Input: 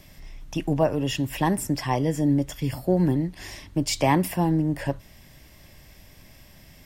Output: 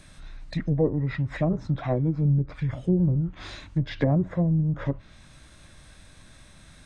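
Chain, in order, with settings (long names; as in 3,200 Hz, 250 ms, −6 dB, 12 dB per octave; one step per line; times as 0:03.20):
treble cut that deepens with the level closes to 800 Hz, closed at −18 dBFS
notch filter 400 Hz, Q 12
formants moved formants −6 semitones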